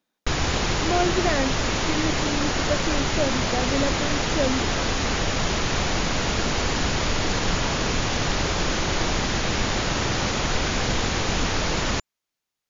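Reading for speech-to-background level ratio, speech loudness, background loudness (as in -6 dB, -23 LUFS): -4.5 dB, -28.5 LUFS, -24.0 LUFS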